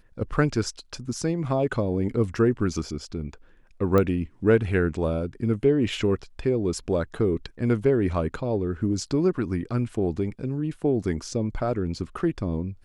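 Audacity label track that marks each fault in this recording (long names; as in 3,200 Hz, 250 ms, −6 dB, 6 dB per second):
3.980000	3.980000	click −11 dBFS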